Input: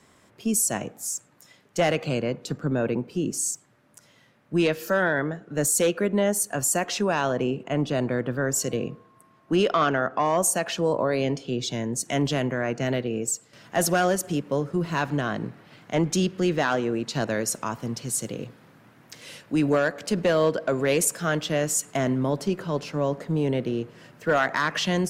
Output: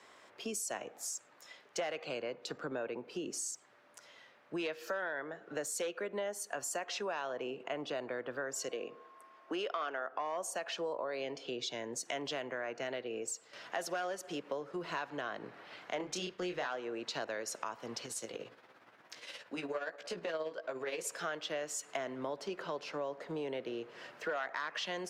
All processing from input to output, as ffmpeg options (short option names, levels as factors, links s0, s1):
-filter_complex "[0:a]asettb=1/sr,asplit=3[s0][s1][s2];[s0]atrim=end=8.694[s3];[s1]atrim=start=8.69:end=10.12,asetpts=PTS-STARTPTS,afade=t=in:d=0.004:c=qsin,afade=t=out:st=1.426:d=0.004:c=qsin,highpass=240,bandreject=f=4000:w=22[s4];[s2]atrim=start=10.116[s5];[s3][s4]acrossfade=d=0.004:c1=hsin:c2=qsin[s6];[s6][s5]acrossfade=d=0.004:c1=qsin:c2=hsin,asettb=1/sr,asplit=3[s7][s8][s9];[s7]atrim=end=15.974[s10];[s8]atrim=start=15.97:end=16.68,asetpts=PTS-STARTPTS,afade=t=in:d=0.004:c=qsin,afade=t=out:st=0.706:d=0.004:c=qsin,agate=range=0.0224:threshold=0.0141:ratio=3:release=100:detection=peak,asubboost=boost=10.5:cutoff=160,asplit=2[s11][s12];[s12]adelay=28,volume=0.562[s13];[s11][s13]amix=inputs=2:normalize=0,atrim=end_sample=31311[s14];[s9]atrim=start=16.676[s15];[s10][s14]acrossfade=d=0.004:c1=hsin:c2=qsin[s16];[s16][s15]acrossfade=d=0.004:c1=qsin:c2=hsin,asettb=1/sr,asplit=3[s17][s18][s19];[s17]atrim=end=18.064[s20];[s18]atrim=start=18.06:end=21.05,asetpts=PTS-STARTPTS,afade=t=in:d=0.004:c=qsin,afade=t=out:st=2.986:d=0.004:c=qsin,flanger=delay=15.5:depth=3.5:speed=1.5,tremolo=f=17:d=0.53[s21];[s19]atrim=start=21.046[s22];[s20][s21]acrossfade=d=0.004:c1=hsin:c2=qsin[s23];[s23][s22]acrossfade=d=0.004:c1=qsin:c2=hsin,acrossover=split=380 5900:gain=0.0891 1 0.224[s24][s25][s26];[s24][s25][s26]amix=inputs=3:normalize=0,acompressor=threshold=0.0112:ratio=4,volume=1.19"